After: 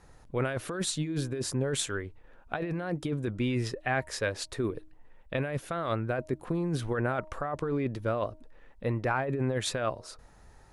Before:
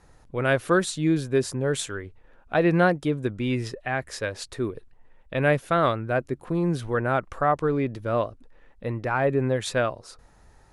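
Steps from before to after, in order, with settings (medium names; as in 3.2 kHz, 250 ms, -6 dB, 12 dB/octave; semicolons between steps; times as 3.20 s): compressor with a negative ratio -26 dBFS, ratio -1; de-hum 312.1 Hz, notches 3; trim -3.5 dB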